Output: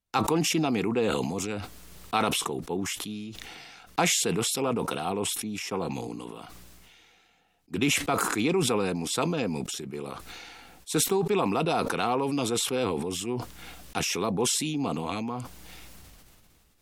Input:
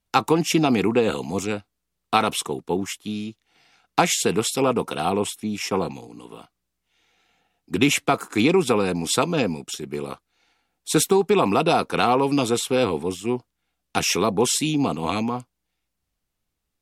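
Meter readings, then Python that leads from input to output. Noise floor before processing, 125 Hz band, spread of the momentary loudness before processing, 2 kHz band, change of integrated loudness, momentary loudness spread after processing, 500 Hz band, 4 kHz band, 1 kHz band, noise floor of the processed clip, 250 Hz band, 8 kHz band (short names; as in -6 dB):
-79 dBFS, -4.5 dB, 12 LU, -5.0 dB, -5.5 dB, 17 LU, -6.5 dB, -3.5 dB, -6.5 dB, -61 dBFS, -6.0 dB, -2.5 dB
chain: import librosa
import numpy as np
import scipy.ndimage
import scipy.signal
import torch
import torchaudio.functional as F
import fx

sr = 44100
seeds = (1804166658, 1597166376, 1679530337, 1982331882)

y = fx.sustainer(x, sr, db_per_s=23.0)
y = y * librosa.db_to_amplitude(-8.0)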